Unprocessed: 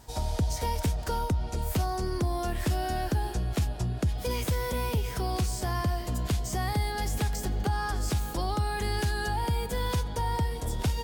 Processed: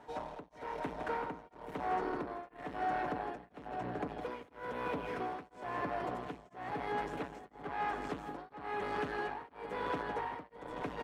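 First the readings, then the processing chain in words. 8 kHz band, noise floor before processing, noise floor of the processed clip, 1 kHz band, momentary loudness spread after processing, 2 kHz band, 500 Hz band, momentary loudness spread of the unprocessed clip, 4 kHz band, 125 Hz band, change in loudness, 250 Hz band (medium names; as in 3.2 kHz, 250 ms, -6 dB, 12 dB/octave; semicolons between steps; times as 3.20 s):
under -25 dB, -37 dBFS, -61 dBFS, -4.0 dB, 9 LU, -5.0 dB, -5.0 dB, 2 LU, -16.5 dB, -22.5 dB, -9.5 dB, -9.0 dB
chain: delay 836 ms -8.5 dB; overload inside the chain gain 31 dB; Bessel low-pass 10 kHz, order 2; three-band isolator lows -23 dB, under 220 Hz, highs -24 dB, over 2.5 kHz; band-stop 4.8 kHz, Q 16; comb 6.9 ms, depth 34%; on a send: delay 164 ms -10 dB; on the sum: tremolo of two beating tones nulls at 1 Hz; trim +2 dB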